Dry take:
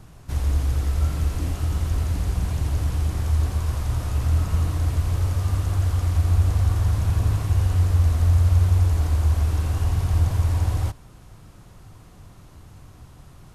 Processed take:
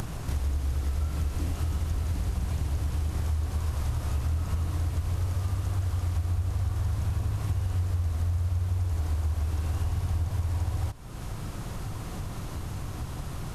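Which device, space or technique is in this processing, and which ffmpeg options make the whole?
upward and downward compression: -af "acompressor=mode=upward:threshold=-23dB:ratio=2.5,acompressor=threshold=-25dB:ratio=6"

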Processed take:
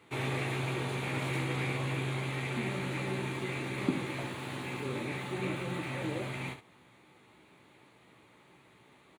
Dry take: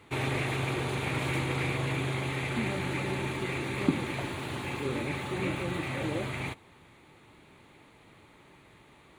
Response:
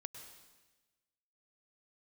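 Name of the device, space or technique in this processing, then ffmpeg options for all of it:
slapback doubling: -filter_complex "[0:a]highpass=110,asplit=3[link_01][link_02][link_03];[link_02]adelay=16,volume=-7dB[link_04];[link_03]adelay=68,volume=-9dB[link_05];[link_01][link_04][link_05]amix=inputs=3:normalize=0,volume=-4.5dB"

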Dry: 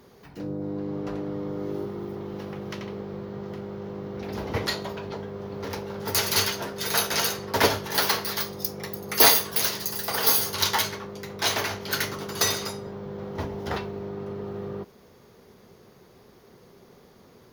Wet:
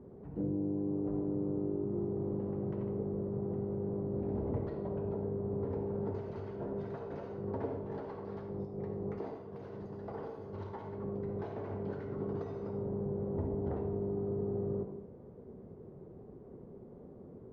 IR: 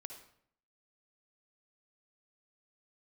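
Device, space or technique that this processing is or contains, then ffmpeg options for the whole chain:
television next door: -filter_complex "[0:a]acompressor=threshold=-33dB:ratio=6,lowpass=450[link_01];[1:a]atrim=start_sample=2205[link_02];[link_01][link_02]afir=irnorm=-1:irlink=0,volume=9dB"

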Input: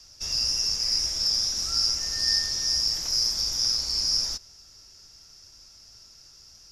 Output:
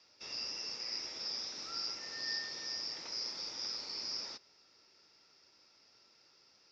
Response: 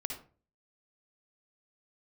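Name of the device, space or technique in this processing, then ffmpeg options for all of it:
phone earpiece: -af "highpass=340,equalizer=frequency=680:width_type=q:width=4:gain=-6,equalizer=frequency=1100:width_type=q:width=4:gain=-4,equalizer=frequency=1600:width_type=q:width=4:gain=-6,equalizer=frequency=3100:width_type=q:width=4:gain=-6,lowpass=frequency=3600:width=0.5412,lowpass=frequency=3600:width=1.3066,volume=-1.5dB"

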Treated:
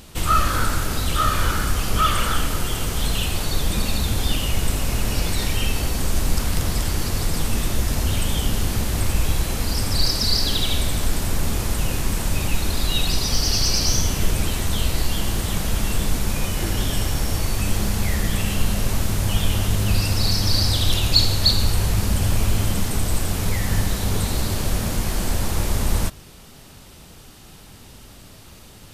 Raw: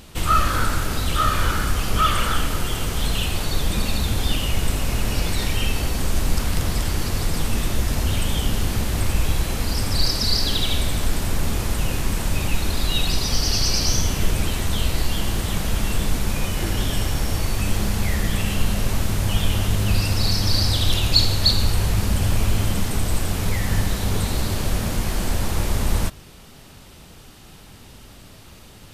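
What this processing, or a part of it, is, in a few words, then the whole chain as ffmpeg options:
exciter from parts: -filter_complex "[0:a]asplit=2[link_01][link_02];[link_02]highpass=3700,asoftclip=type=tanh:threshold=-21dB,volume=-9dB[link_03];[link_01][link_03]amix=inputs=2:normalize=0"

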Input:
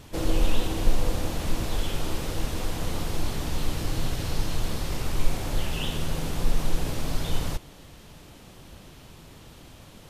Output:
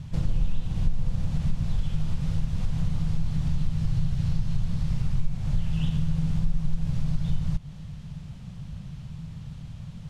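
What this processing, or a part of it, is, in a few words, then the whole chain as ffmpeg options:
jukebox: -af "lowpass=7500,lowshelf=frequency=230:width_type=q:width=3:gain=13,acompressor=threshold=-17dB:ratio=3,volume=-5dB"

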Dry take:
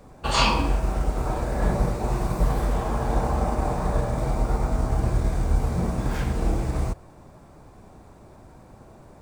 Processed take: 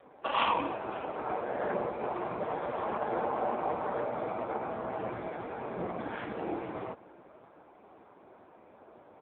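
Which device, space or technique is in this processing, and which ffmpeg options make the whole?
satellite phone: -af "highpass=340,lowpass=3200,aecho=1:1:551:0.0668" -ar 8000 -c:a libopencore_amrnb -b:a 5150

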